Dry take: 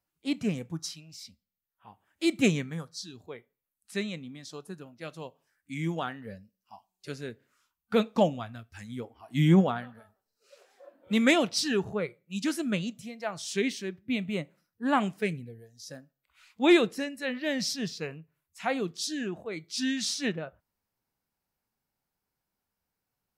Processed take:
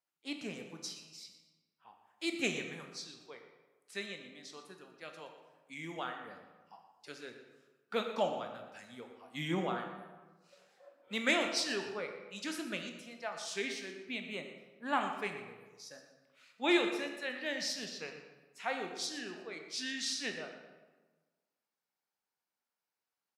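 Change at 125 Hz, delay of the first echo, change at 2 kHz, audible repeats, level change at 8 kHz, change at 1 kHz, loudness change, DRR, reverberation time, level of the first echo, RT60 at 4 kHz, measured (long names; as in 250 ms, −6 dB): −18.0 dB, 119 ms, −3.5 dB, 1, −5.5 dB, −4.5 dB, −8.0 dB, 4.5 dB, 1.3 s, −14.0 dB, 0.85 s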